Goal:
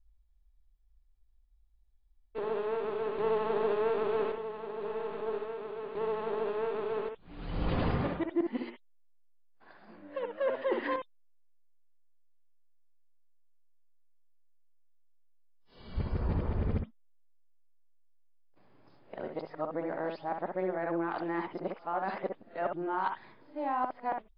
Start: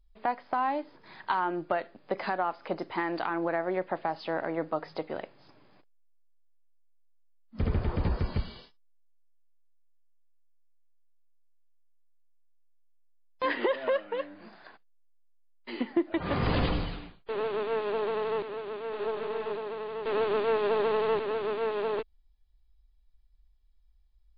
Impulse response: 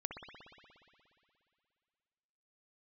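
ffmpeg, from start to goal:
-filter_complex "[0:a]areverse,highshelf=f=2.3k:g=-9.5[a];[1:a]atrim=start_sample=2205,atrim=end_sample=4410[b];[a][b]afir=irnorm=-1:irlink=0"

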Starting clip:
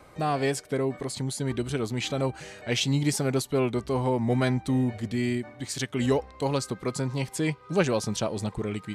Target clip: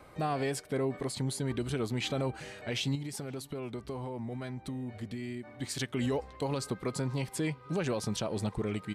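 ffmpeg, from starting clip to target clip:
-filter_complex "[0:a]equalizer=f=6.5k:w=1.8:g=-4.5,alimiter=limit=-21.5dB:level=0:latency=1:release=66,asettb=1/sr,asplit=3[a][b][c];[a]atrim=end=2.954[d];[b]atrim=start=2.95:end=5.54,asetpts=PTS-STARTPTS,afade=t=in:d=0.004:c=qsin,afade=t=out:st=2.586:d=0.004:c=qsin,acompressor=threshold=-34dB:ratio=6[e];[c]atrim=start=5.536[f];[d][e]acrossfade=d=0.004:c1=hsin:c2=qsin[g];[g][f]acrossfade=d=0.004:c1=qsin:c2=hsin,asplit=2[h][i];[i]adelay=513.1,volume=-25dB,highshelf=f=4k:g=-11.5[j];[h][j]amix=inputs=2:normalize=0,volume=-2dB"

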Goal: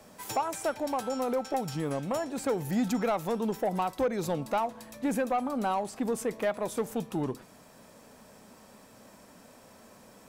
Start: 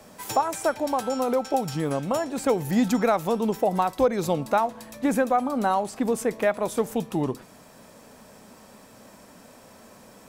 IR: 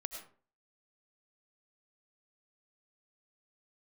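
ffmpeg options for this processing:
-af "asoftclip=type=tanh:threshold=-16dB,volume=-4.5dB"

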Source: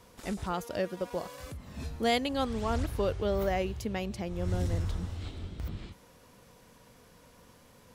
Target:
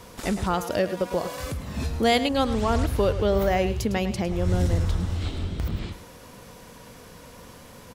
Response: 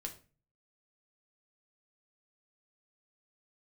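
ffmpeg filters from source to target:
-filter_complex "[0:a]asplit=2[a][b];[b]acompressor=threshold=-37dB:ratio=6,volume=2dB[c];[a][c]amix=inputs=2:normalize=0,aecho=1:1:106:0.237,volume=4.5dB"

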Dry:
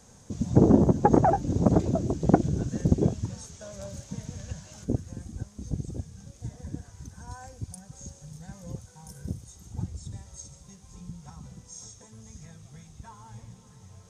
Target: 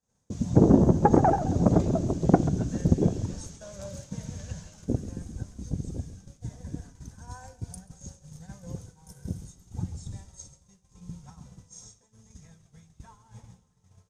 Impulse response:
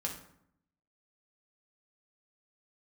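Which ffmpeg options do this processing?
-filter_complex "[0:a]asplit=6[a][b][c][d][e][f];[b]adelay=135,afreqshift=-34,volume=-12.5dB[g];[c]adelay=270,afreqshift=-68,volume=-18.7dB[h];[d]adelay=405,afreqshift=-102,volume=-24.9dB[i];[e]adelay=540,afreqshift=-136,volume=-31.1dB[j];[f]adelay=675,afreqshift=-170,volume=-37.3dB[k];[a][g][h][i][j][k]amix=inputs=6:normalize=0,agate=range=-33dB:threshold=-39dB:ratio=3:detection=peak,asplit=2[l][m];[1:a]atrim=start_sample=2205[n];[m][n]afir=irnorm=-1:irlink=0,volume=-16.5dB[o];[l][o]amix=inputs=2:normalize=0,volume=-1dB"

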